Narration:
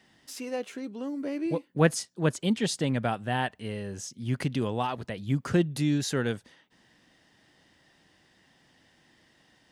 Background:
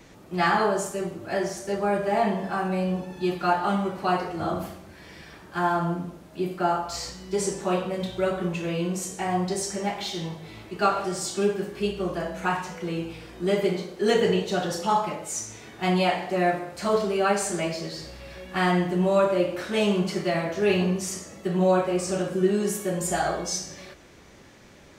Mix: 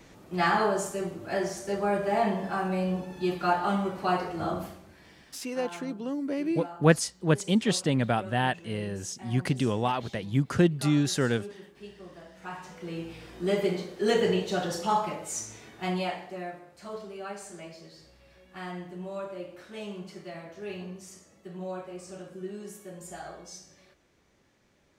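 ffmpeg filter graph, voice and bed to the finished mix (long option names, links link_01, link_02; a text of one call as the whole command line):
ffmpeg -i stem1.wav -i stem2.wav -filter_complex "[0:a]adelay=5050,volume=2dB[link_01];[1:a]volume=13dB,afade=type=out:start_time=4.44:duration=0.99:silence=0.158489,afade=type=in:start_time=12.36:duration=0.99:silence=0.16788,afade=type=out:start_time=15.39:duration=1.1:silence=0.223872[link_02];[link_01][link_02]amix=inputs=2:normalize=0" out.wav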